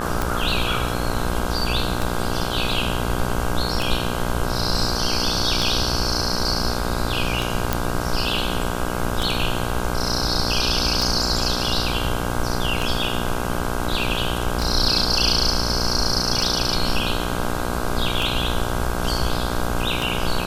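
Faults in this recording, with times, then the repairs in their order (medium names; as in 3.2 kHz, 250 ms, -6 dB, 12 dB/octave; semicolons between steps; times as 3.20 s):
buzz 60 Hz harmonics 27 -26 dBFS
tick 33 1/3 rpm
7.73 s: pop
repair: de-click; de-hum 60 Hz, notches 27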